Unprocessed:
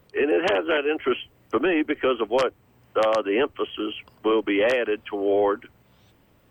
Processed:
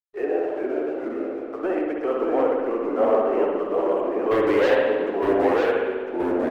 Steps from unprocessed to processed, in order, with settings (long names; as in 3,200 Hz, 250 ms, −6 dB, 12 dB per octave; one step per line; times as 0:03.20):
low-pass filter 1,800 Hz 12 dB per octave
parametric band 680 Hz +11.5 dB 1.3 octaves
0:00.39–0:01.60: downward compressor 6 to 1, threshold −25 dBFS, peak gain reduction 14.5 dB
0:04.31–0:04.75: leveller curve on the samples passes 3
flanger 0.99 Hz, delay 1.9 ms, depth 9.9 ms, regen −20%
slack as between gear wheels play −41.5 dBFS
single-tap delay 932 ms −13.5 dB
spring reverb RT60 1.4 s, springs 59 ms, chirp 65 ms, DRR −0.5 dB
delay with pitch and tempo change per echo 382 ms, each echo −2 semitones, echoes 2
level −7 dB